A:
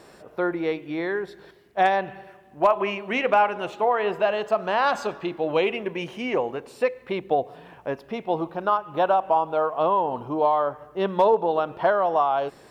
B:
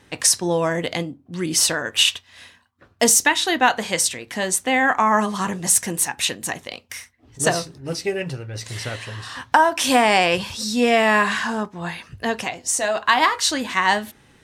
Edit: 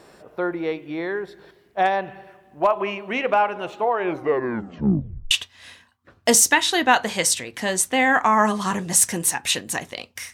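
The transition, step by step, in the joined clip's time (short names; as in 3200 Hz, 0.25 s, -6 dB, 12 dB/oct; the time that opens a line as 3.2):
A
3.89 tape stop 1.42 s
5.31 switch to B from 2.05 s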